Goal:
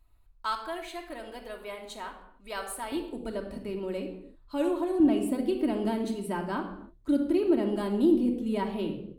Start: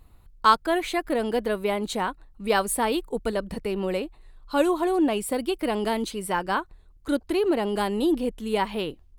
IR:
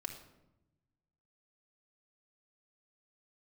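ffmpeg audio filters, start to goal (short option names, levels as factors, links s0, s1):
-filter_complex "[0:a]asetnsamples=n=441:p=0,asendcmd='2.92 equalizer g 5;5 equalizer g 12',equalizer=f=200:w=0.56:g=-9.5[s0];[1:a]atrim=start_sample=2205,afade=t=out:st=0.37:d=0.01,atrim=end_sample=16758[s1];[s0][s1]afir=irnorm=-1:irlink=0,volume=0.376"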